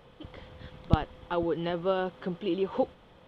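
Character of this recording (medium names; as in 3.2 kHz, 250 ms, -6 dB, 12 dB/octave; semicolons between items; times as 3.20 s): noise floor -57 dBFS; spectral tilt -6.0 dB/octave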